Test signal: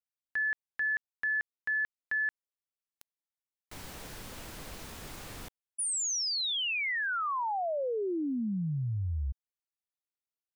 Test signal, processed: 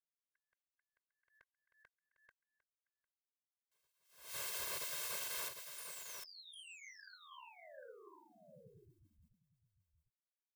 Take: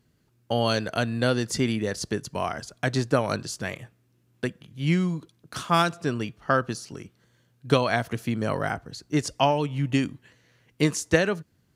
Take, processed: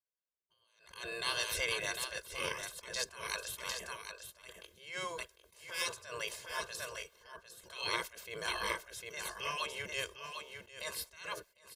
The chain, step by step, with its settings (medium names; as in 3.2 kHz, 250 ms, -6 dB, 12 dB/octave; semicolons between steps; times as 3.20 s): treble shelf 8.9 kHz +6.5 dB; gate with hold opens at -52 dBFS, closes at -56 dBFS, hold 63 ms, range -32 dB; spectral gate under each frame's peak -15 dB weak; comb 1.9 ms, depth 99%; compression 3:1, threshold -30 dBFS; on a send: delay 752 ms -7 dB; on the sum: attacks held to a fixed rise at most 110 dB/s